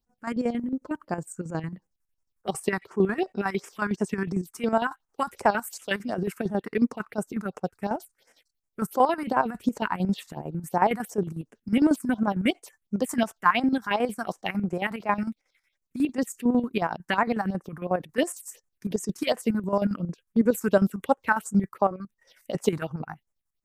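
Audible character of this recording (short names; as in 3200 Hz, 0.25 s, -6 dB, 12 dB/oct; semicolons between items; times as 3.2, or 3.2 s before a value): phasing stages 4, 2.8 Hz, lowest notch 490–4000 Hz; chopped level 11 Hz, depth 65%, duty 55%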